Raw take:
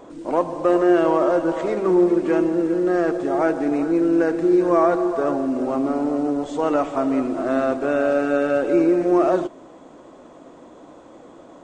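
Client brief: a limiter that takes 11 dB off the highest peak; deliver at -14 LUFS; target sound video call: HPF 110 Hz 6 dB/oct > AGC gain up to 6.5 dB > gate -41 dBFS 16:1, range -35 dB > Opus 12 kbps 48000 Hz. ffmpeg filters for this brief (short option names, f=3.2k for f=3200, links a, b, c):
-af "alimiter=limit=-16.5dB:level=0:latency=1,highpass=f=110:p=1,dynaudnorm=m=6.5dB,agate=range=-35dB:threshold=-41dB:ratio=16,volume=12dB" -ar 48000 -c:a libopus -b:a 12k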